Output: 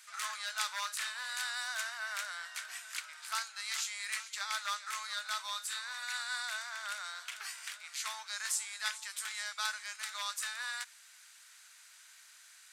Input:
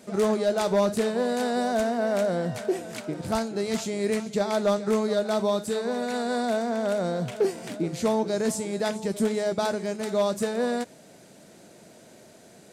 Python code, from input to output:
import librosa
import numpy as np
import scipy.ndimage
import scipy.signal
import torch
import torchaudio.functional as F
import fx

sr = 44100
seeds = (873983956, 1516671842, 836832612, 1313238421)

y = scipy.signal.sosfilt(scipy.signal.butter(6, 1200.0, 'highpass', fs=sr, output='sos'), x)